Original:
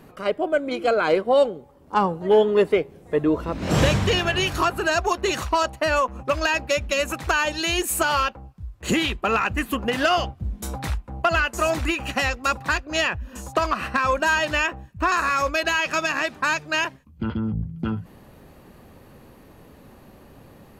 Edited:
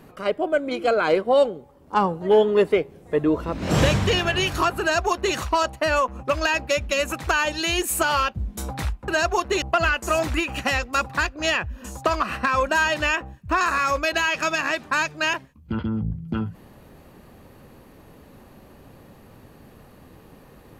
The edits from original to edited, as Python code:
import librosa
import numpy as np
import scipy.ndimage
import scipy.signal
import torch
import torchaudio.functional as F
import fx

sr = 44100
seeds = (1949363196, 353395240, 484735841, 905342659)

y = fx.edit(x, sr, fx.duplicate(start_s=4.81, length_s=0.54, to_s=11.13),
    fx.cut(start_s=8.34, length_s=2.05), tone=tone)